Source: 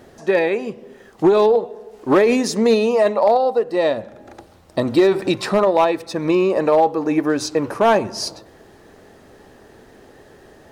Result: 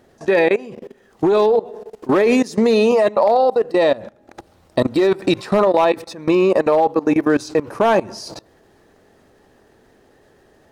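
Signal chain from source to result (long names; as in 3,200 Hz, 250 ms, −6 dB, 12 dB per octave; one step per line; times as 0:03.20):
output level in coarse steps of 20 dB
level +6.5 dB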